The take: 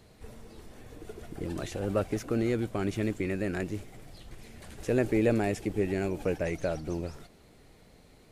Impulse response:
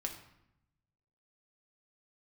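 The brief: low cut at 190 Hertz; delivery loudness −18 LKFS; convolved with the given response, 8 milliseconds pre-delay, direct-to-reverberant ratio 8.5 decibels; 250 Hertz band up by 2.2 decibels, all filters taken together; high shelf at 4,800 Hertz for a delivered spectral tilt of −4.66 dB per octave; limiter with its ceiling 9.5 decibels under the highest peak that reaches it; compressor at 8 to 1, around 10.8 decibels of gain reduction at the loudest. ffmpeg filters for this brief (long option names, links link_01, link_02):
-filter_complex "[0:a]highpass=190,equalizer=frequency=250:width_type=o:gain=4.5,highshelf=frequency=4800:gain=8,acompressor=threshold=-31dB:ratio=8,alimiter=level_in=4dB:limit=-24dB:level=0:latency=1,volume=-4dB,asplit=2[link_01][link_02];[1:a]atrim=start_sample=2205,adelay=8[link_03];[link_02][link_03]afir=irnorm=-1:irlink=0,volume=-8.5dB[link_04];[link_01][link_04]amix=inputs=2:normalize=0,volume=21.5dB"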